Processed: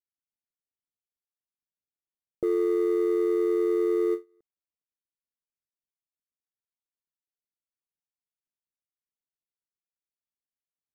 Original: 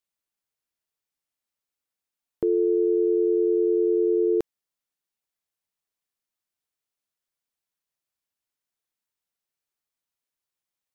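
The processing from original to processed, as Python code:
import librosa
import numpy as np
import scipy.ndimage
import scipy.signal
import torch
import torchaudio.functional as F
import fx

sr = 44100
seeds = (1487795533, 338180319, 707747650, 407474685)

p1 = scipy.ndimage.median_filter(x, 41, mode='constant')
p2 = fx.env_lowpass(p1, sr, base_hz=430.0, full_db=-20.5)
p3 = fx.quant_float(p2, sr, bits=2)
p4 = p2 + (p3 * 10.0 ** (-10.0 / 20.0))
p5 = fx.end_taper(p4, sr, db_per_s=310.0)
y = p5 * 10.0 ** (-4.5 / 20.0)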